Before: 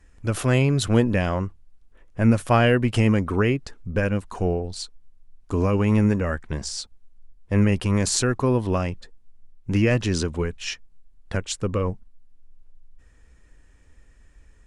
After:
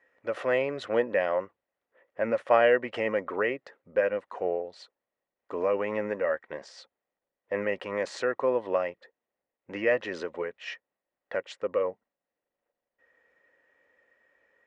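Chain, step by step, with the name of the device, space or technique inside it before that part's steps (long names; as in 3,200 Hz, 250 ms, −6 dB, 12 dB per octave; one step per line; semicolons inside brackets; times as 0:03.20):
tin-can telephone (band-pass filter 510–2,400 Hz; hollow resonant body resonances 540/1,900 Hz, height 11 dB, ringing for 25 ms)
level −4 dB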